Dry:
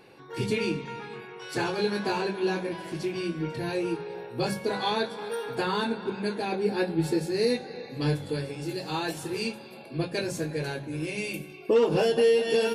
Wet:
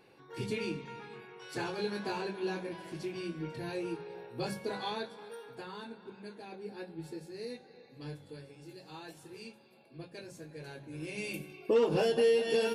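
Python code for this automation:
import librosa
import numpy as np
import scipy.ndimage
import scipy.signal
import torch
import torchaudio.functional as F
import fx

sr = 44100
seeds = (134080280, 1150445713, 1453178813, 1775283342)

y = fx.gain(x, sr, db=fx.line((4.74, -8.0), (5.67, -17.0), (10.46, -17.0), (11.32, -5.0)))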